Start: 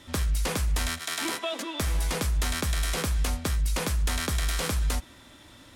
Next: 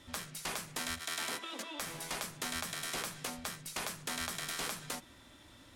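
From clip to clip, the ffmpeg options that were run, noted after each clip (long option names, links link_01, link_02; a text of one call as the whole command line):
ffmpeg -i in.wav -af "afftfilt=real='re*lt(hypot(re,im),0.126)':imag='im*lt(hypot(re,im),0.126)':win_size=1024:overlap=0.75,volume=-6.5dB" out.wav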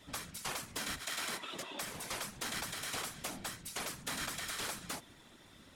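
ffmpeg -i in.wav -af "afftfilt=real='hypot(re,im)*cos(2*PI*random(0))':imag='hypot(re,im)*sin(2*PI*random(1))':win_size=512:overlap=0.75,volume=5dB" out.wav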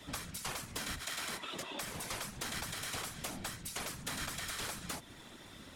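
ffmpeg -i in.wav -filter_complex "[0:a]acrossover=split=140[link_01][link_02];[link_02]acompressor=threshold=-49dB:ratio=2[link_03];[link_01][link_03]amix=inputs=2:normalize=0,volume=6dB" out.wav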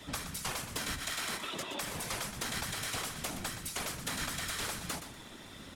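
ffmpeg -i in.wav -af "aecho=1:1:121|242|363:0.316|0.0917|0.0266,volume=3dB" out.wav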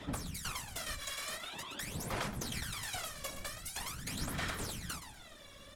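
ffmpeg -i in.wav -af "aphaser=in_gain=1:out_gain=1:delay=1.8:decay=0.73:speed=0.45:type=sinusoidal,volume=-7dB" out.wav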